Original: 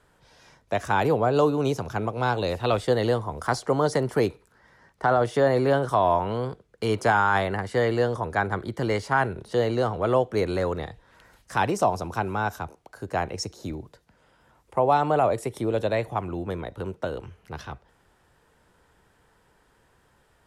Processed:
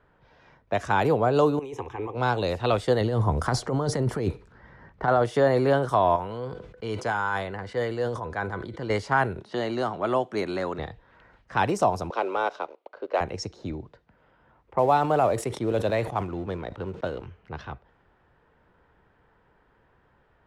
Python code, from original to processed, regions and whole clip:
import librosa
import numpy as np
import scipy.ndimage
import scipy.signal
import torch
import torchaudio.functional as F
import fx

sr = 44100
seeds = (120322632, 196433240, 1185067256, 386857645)

y = fx.chain(x, sr, fx.low_shelf(hz=150.0, db=-8.0),
    fx.over_compress(threshold_db=-29.0, ratio=-0.5),
    fx.fixed_phaser(hz=940.0, stages=8), at=(1.59, 2.15))
y = fx.chain(y, sr, fx.low_shelf(hz=250.0, db=9.5),
    fx.over_compress(threshold_db=-24.0, ratio=-1.0), at=(3.01, 5.08))
y = fx.chain(y, sr, fx.high_shelf(hz=9700.0, db=11.5),
    fx.comb_fb(f0_hz=500.0, decay_s=0.16, harmonics='all', damping=0.0, mix_pct=60),
    fx.sustainer(db_per_s=59.0), at=(6.16, 8.9))
y = fx.chain(y, sr, fx.highpass(hz=190.0, slope=12),
    fx.peak_eq(hz=480.0, db=-11.0, octaves=0.26), at=(9.41, 10.79))
y = fx.chain(y, sr, fx.cabinet(low_hz=350.0, low_slope=24, high_hz=4500.0, hz=(550.0, 780.0, 1700.0), db=(7, -4, -9)),
    fx.leveller(passes=1), at=(12.1, 13.21))
y = fx.chain(y, sr, fx.law_mismatch(coded='A'),
    fx.highpass(hz=45.0, slope=12),
    fx.sustainer(db_per_s=110.0), at=(14.78, 17.26))
y = fx.high_shelf(y, sr, hz=9700.0, db=-6.0)
y = fx.env_lowpass(y, sr, base_hz=2300.0, full_db=-21.0)